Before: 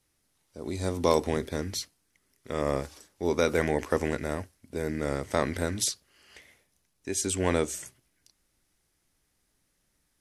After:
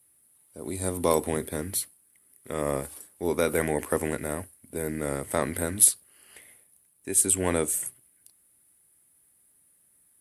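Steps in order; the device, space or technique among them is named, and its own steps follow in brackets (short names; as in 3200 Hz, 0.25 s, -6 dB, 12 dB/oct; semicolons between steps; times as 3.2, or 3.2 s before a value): budget condenser microphone (HPF 81 Hz; resonant high shelf 7700 Hz +10.5 dB, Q 3)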